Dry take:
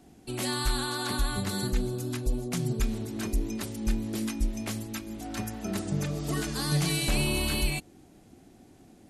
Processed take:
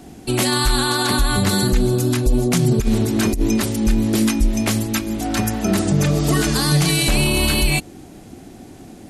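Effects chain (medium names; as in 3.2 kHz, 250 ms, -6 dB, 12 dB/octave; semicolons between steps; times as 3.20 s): 2.36–3.61 s: compressor with a negative ratio -28 dBFS, ratio -0.5; loudness maximiser +22 dB; trim -7 dB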